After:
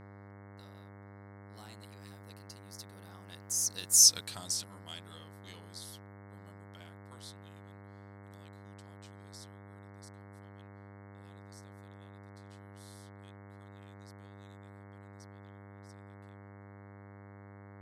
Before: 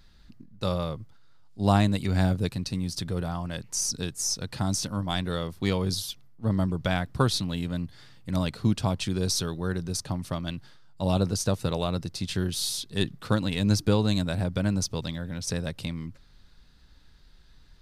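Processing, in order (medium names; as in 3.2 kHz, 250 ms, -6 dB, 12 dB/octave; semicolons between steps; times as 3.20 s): Doppler pass-by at 4.06 s, 21 m/s, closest 2.3 m; tilt EQ +4.5 dB/octave; mains buzz 100 Hz, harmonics 22, -49 dBFS -5 dB/octave; trim -2.5 dB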